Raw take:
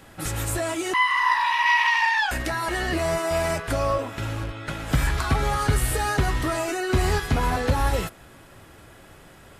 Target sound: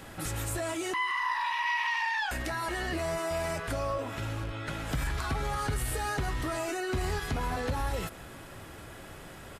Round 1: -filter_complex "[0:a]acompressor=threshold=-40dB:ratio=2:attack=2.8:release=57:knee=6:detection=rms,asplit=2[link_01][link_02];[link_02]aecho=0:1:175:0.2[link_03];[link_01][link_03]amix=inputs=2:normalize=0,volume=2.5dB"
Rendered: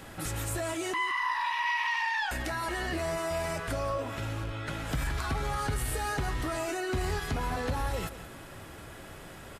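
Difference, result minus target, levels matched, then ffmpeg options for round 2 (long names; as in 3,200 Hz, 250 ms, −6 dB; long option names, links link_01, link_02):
echo-to-direct +10 dB
-filter_complex "[0:a]acompressor=threshold=-40dB:ratio=2:attack=2.8:release=57:knee=6:detection=rms,asplit=2[link_01][link_02];[link_02]aecho=0:1:175:0.0631[link_03];[link_01][link_03]amix=inputs=2:normalize=0,volume=2.5dB"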